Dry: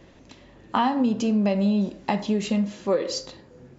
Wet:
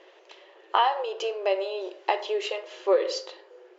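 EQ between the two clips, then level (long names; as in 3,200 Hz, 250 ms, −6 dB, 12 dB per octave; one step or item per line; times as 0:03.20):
linear-phase brick-wall high-pass 340 Hz
high-frequency loss of the air 120 metres
parametric band 3,000 Hz +6 dB 0.25 octaves
+2.0 dB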